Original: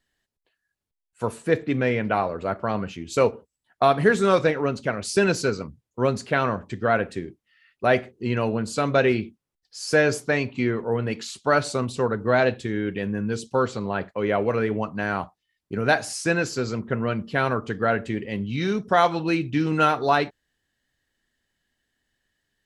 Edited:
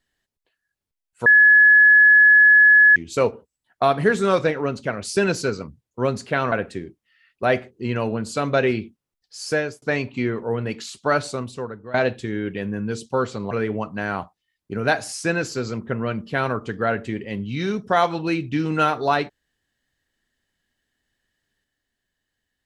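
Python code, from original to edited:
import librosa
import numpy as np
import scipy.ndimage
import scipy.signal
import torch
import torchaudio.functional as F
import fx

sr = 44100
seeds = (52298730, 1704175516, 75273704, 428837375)

y = fx.edit(x, sr, fx.bleep(start_s=1.26, length_s=1.7, hz=1700.0, db=-8.5),
    fx.cut(start_s=6.52, length_s=0.41),
    fx.fade_out_span(start_s=9.86, length_s=0.37),
    fx.fade_out_to(start_s=11.54, length_s=0.81, floor_db=-18.5),
    fx.cut(start_s=13.92, length_s=0.6), tone=tone)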